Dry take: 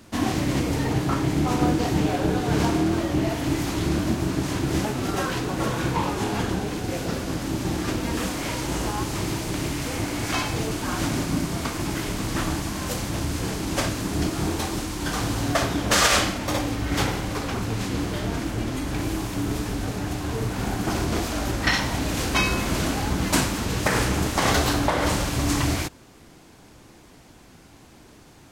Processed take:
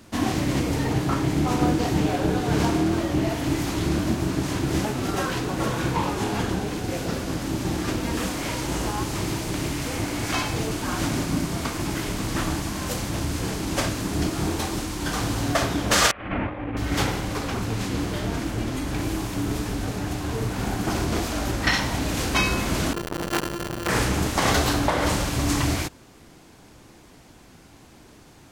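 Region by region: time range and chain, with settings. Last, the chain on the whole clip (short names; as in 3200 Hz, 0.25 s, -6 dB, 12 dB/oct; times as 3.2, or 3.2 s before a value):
16.11–16.77 steep low-pass 2600 Hz + negative-ratio compressor -29 dBFS, ratio -0.5
22.93–23.89 sample sorter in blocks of 128 samples + comb 6.5 ms, depth 74% + core saturation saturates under 1400 Hz
whole clip: dry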